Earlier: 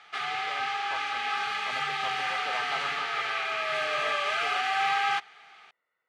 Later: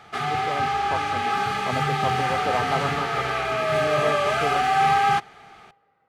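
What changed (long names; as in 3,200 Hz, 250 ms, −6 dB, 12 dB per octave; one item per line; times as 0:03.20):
speech: send on
master: remove resonant band-pass 2,800 Hz, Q 0.82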